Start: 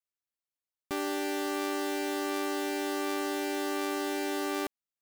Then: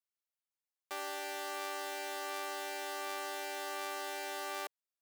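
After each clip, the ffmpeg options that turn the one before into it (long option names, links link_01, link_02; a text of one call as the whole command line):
ffmpeg -i in.wav -af "highpass=frequency=500:width=0.5412,highpass=frequency=500:width=1.3066,volume=-4.5dB" out.wav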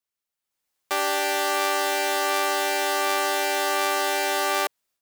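ffmpeg -i in.wav -af "dynaudnorm=framelen=380:gausssize=3:maxgain=12dB,volume=4.5dB" out.wav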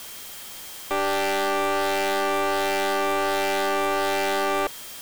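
ffmpeg -i in.wav -af "aeval=exprs='val(0)+0.5*0.0282*sgn(val(0))':channel_layout=same,aeval=exprs='0.473*(cos(1*acos(clip(val(0)/0.473,-1,1)))-cos(1*PI/2))+0.119*(cos(5*acos(clip(val(0)/0.473,-1,1)))-cos(5*PI/2))+0.0668*(cos(6*acos(clip(val(0)/0.473,-1,1)))-cos(6*PI/2))':channel_layout=same,aeval=exprs='val(0)+0.00794*sin(2*PI*3200*n/s)':channel_layout=same,volume=-6.5dB" out.wav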